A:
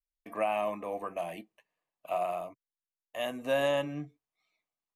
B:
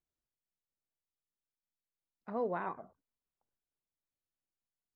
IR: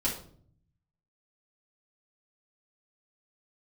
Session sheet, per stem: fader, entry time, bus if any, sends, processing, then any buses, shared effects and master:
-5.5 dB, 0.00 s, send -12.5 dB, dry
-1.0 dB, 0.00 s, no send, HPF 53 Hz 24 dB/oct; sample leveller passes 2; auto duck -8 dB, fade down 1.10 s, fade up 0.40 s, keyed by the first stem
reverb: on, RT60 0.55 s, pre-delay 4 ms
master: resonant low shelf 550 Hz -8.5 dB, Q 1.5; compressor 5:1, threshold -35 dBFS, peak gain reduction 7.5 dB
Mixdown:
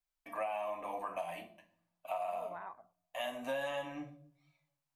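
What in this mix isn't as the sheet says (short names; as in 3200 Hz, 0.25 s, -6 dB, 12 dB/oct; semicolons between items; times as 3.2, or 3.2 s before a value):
stem A: send -12.5 dB -> -3.5 dB; stem B: missing sample leveller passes 2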